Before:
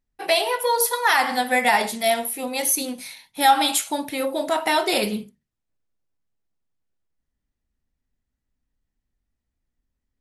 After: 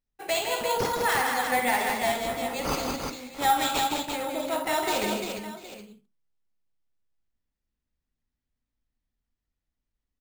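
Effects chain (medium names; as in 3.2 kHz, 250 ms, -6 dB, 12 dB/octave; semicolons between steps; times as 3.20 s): on a send: multi-tap echo 58/159/204/345/693/765 ms -8/-5.5/-8/-5.5/-19/-15 dB; on the sum: careless resampling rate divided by 4×, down none, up hold; trim -8 dB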